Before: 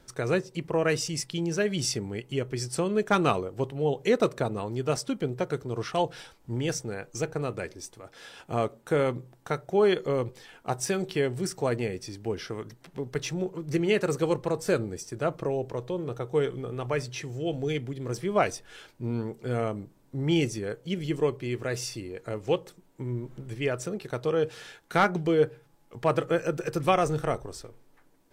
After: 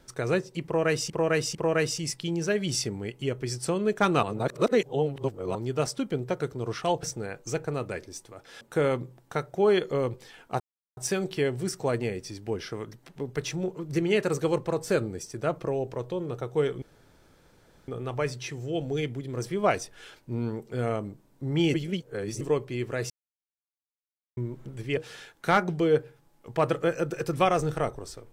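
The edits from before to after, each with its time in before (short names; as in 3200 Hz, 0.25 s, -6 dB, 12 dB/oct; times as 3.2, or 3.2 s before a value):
0.65–1.1 loop, 3 plays
3.33–4.65 reverse
6.13–6.71 cut
8.29–8.76 cut
10.75 insert silence 0.37 s
16.6 insert room tone 1.06 s
20.46–21.13 reverse
21.82–23.09 mute
23.69–24.44 cut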